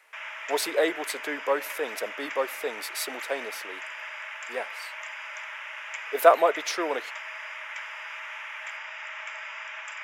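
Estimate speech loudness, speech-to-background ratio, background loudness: −28.0 LKFS, 8.5 dB, −36.5 LKFS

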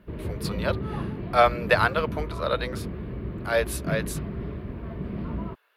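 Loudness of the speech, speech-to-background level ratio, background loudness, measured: −26.0 LKFS, 7.0 dB, −33.0 LKFS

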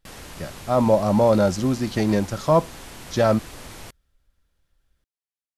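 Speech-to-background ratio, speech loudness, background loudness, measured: 19.0 dB, −21.0 LKFS, −40.0 LKFS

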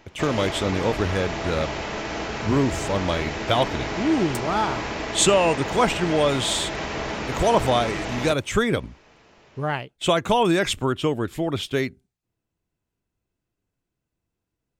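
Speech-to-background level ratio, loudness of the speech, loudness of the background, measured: 5.5 dB, −23.5 LKFS, −29.0 LKFS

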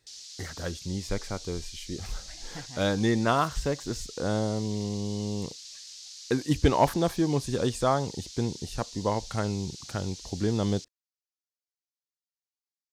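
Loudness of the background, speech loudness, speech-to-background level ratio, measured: −42.0 LKFS, −29.5 LKFS, 12.5 dB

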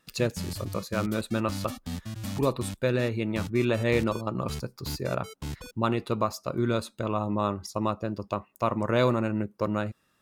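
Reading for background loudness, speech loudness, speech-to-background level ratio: −39.0 LKFS, −29.5 LKFS, 9.5 dB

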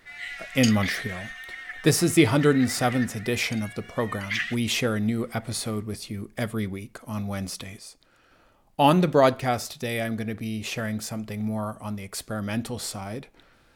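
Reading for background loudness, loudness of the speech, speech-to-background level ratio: −34.0 LKFS, −26.0 LKFS, 8.0 dB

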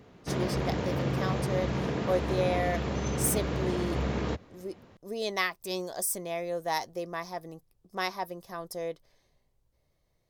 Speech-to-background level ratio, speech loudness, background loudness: −2.5 dB, −34.0 LKFS, −31.5 LKFS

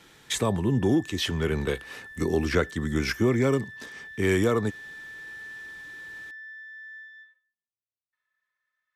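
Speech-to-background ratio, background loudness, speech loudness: 16.0 dB, −42.0 LKFS, −26.0 LKFS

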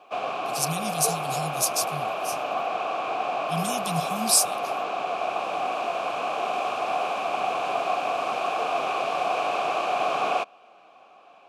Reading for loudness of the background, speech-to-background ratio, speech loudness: −27.5 LKFS, 1.5 dB, −26.0 LKFS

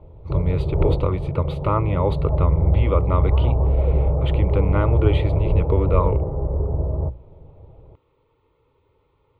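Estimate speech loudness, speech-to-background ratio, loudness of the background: −24.5 LKFS, −2.0 dB, −22.5 LKFS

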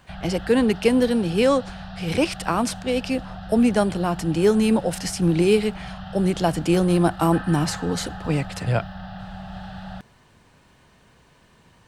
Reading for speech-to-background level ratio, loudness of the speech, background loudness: 15.0 dB, −22.0 LKFS, −37.0 LKFS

